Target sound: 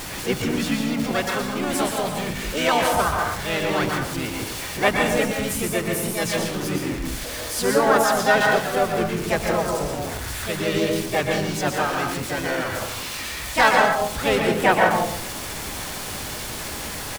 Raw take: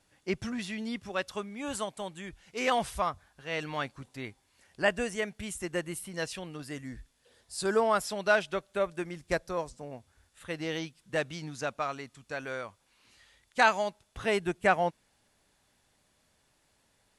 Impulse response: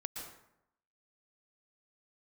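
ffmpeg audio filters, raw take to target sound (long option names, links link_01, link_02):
-filter_complex "[0:a]aeval=exprs='val(0)+0.5*0.0224*sgn(val(0))':channel_layout=same[link_01];[1:a]atrim=start_sample=2205,afade=type=out:start_time=0.37:duration=0.01,atrim=end_sample=16758[link_02];[link_01][link_02]afir=irnorm=-1:irlink=0,asplit=3[link_03][link_04][link_05];[link_04]asetrate=29433,aresample=44100,atempo=1.49831,volume=-9dB[link_06];[link_05]asetrate=55563,aresample=44100,atempo=0.793701,volume=-2dB[link_07];[link_03][link_06][link_07]amix=inputs=3:normalize=0,volume=6.5dB"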